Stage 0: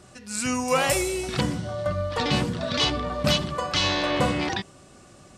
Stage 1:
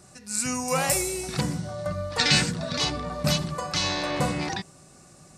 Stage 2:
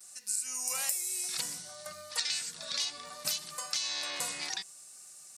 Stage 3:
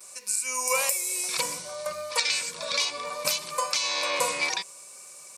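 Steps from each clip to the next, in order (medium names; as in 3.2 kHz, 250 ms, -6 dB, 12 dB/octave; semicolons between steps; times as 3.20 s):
graphic EQ with 31 bands 160 Hz +9 dB, 800 Hz +3 dB, 3.15 kHz -8 dB; time-frequency box 2.19–2.51 s, 1.3–9 kHz +11 dB; treble shelf 4.5 kHz +10 dB; trim -4.5 dB
vibrato 0.64 Hz 36 cents; differentiator; compression 16:1, threshold -34 dBFS, peak gain reduction 14.5 dB; trim +5 dB
small resonant body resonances 520/1000/2300 Hz, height 16 dB, ringing for 25 ms; trim +5 dB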